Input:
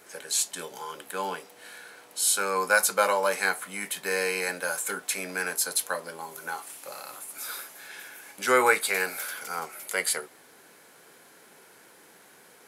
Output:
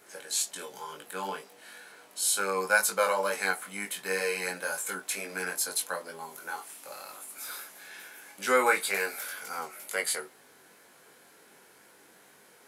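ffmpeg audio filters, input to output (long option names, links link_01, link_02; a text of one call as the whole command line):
ffmpeg -i in.wav -af "flanger=delay=19.5:depth=2.2:speed=2.1" out.wav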